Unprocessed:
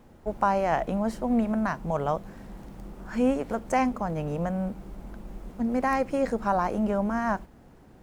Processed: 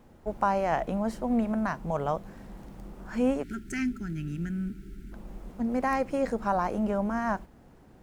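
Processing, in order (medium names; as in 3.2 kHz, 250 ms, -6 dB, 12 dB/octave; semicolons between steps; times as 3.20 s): time-frequency box 3.43–5.12 s, 420–1300 Hz -29 dB; trim -2 dB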